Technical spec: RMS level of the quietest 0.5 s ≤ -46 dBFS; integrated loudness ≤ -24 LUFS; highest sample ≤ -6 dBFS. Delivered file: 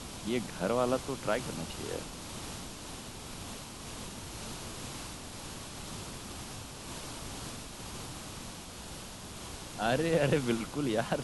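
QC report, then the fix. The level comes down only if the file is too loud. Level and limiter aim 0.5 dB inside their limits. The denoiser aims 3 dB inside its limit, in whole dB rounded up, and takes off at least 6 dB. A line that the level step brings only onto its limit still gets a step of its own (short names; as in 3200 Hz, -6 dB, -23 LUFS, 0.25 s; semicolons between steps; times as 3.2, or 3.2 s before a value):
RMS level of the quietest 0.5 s -45 dBFS: fail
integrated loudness -36.5 LUFS: OK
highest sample -15.0 dBFS: OK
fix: denoiser 6 dB, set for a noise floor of -45 dBFS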